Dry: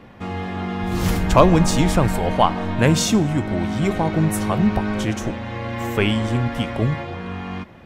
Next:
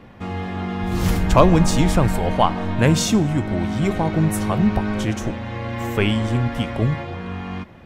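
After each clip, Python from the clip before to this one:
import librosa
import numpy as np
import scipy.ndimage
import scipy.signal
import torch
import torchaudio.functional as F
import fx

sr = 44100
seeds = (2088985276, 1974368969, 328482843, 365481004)

y = fx.low_shelf(x, sr, hz=140.0, db=3.5)
y = y * librosa.db_to_amplitude(-1.0)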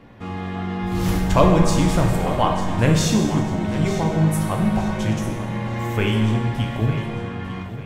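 y = fx.echo_feedback(x, sr, ms=899, feedback_pct=36, wet_db=-13.0)
y = fx.rev_plate(y, sr, seeds[0], rt60_s=1.4, hf_ratio=0.85, predelay_ms=0, drr_db=1.5)
y = y * librosa.db_to_amplitude(-3.5)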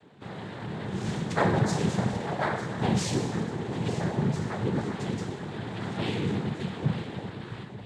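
y = fx.noise_vocoder(x, sr, seeds[1], bands=6)
y = y * librosa.db_to_amplitude(-8.5)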